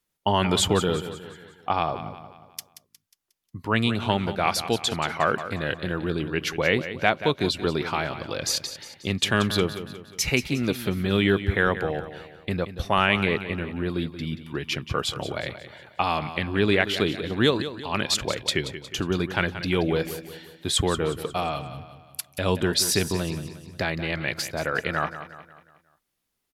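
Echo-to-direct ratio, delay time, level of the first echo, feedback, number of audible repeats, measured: -11.0 dB, 0.18 s, -12.0 dB, 46%, 4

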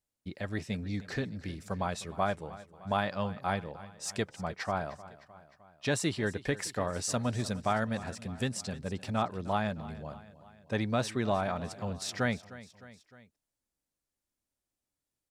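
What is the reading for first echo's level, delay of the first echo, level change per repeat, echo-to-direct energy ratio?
-17.5 dB, 0.306 s, -4.5 dB, -16.0 dB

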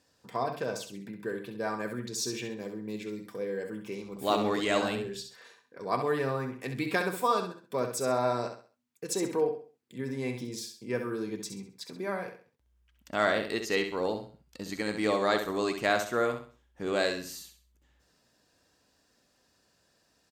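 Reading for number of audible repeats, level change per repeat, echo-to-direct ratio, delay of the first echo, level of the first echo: 3, -9.5 dB, -7.0 dB, 66 ms, -7.5 dB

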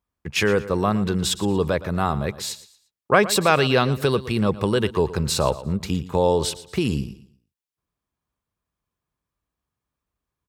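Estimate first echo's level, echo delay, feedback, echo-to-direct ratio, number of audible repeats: -16.0 dB, 0.116 s, 33%, -15.5 dB, 2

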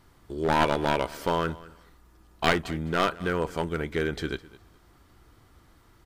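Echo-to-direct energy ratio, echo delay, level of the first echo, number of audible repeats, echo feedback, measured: -20.0 dB, 0.208 s, -20.0 dB, 2, 19%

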